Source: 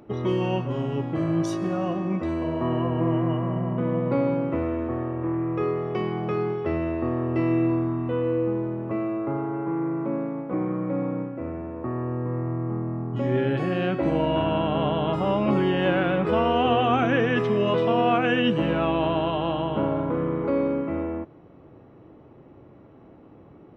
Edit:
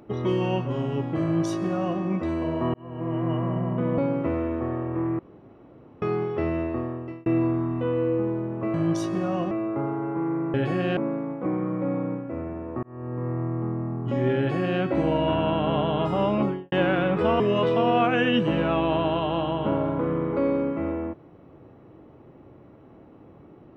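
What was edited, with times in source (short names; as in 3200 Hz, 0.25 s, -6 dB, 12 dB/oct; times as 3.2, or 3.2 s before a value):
1.23–2 copy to 9.02
2.74–3.39 fade in
3.98–4.26 cut
5.47–6.3 room tone
6.89–7.54 fade out
11.91–12.51 fade in equal-power
13.46–13.89 copy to 10.05
15.4–15.8 studio fade out
16.48–17.51 cut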